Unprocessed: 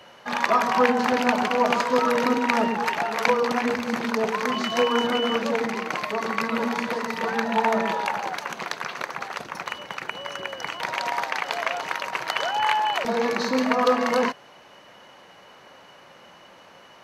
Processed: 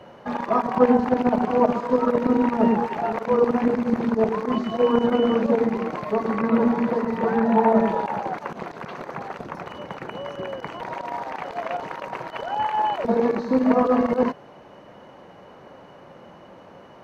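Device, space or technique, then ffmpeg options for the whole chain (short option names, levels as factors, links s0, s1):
de-esser from a sidechain: -filter_complex "[0:a]asettb=1/sr,asplit=3[s0][s1][s2];[s0]atrim=end=6.384[s3];[s1]atrim=start=6.38:end=7.75,asetpts=PTS-STARTPTS,afade=t=in:d=0.004:c=qsin,afade=t=out:st=1.366:d=0.004:c=qsin,acrossover=split=2700[s4][s5];[s5]acompressor=threshold=0.00891:ratio=4:attack=1:release=60[s6];[s4][s6]amix=inputs=2:normalize=0[s7];[s2]atrim=start=7.746[s8];[s3][s7]acrossfade=d=0.004:c1=hsin:c2=qsin[s9];[s9][s8]acrossfade=d=0.004:c1=qsin:c2=hsin,asplit=2[s10][s11];[s11]highpass=f=5800:w=0.5412,highpass=f=5800:w=1.3066,apad=whole_len=751138[s12];[s10][s12]sidechaincompress=threshold=0.00398:ratio=6:attack=0.61:release=32,tiltshelf=f=1200:g=10"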